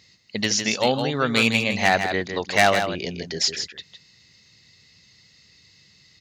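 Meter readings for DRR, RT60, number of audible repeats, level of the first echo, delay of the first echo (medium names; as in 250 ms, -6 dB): no reverb, no reverb, 1, -7.5 dB, 158 ms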